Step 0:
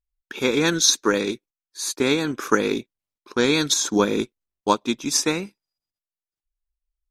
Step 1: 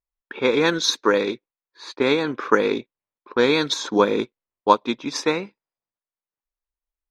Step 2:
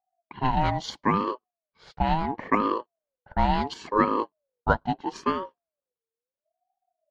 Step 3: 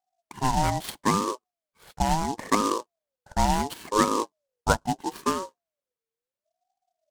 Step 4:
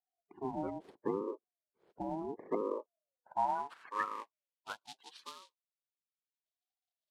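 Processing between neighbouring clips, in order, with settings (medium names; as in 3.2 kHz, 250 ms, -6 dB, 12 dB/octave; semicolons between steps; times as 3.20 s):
level-controlled noise filter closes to 2.1 kHz, open at -14.5 dBFS; graphic EQ 125/250/500/1000/2000/4000/8000 Hz +6/+5/+11/+11/+8/+8/-5 dB; trim -10 dB
tilt EQ -3.5 dB/octave; ring modulator with a swept carrier 600 Hz, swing 25%, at 0.74 Hz; trim -5.5 dB
delay time shaken by noise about 5.4 kHz, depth 0.042 ms
coarse spectral quantiser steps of 30 dB; band-pass sweep 390 Hz -> 3.7 kHz, 2.49–4.85 s; trim -4.5 dB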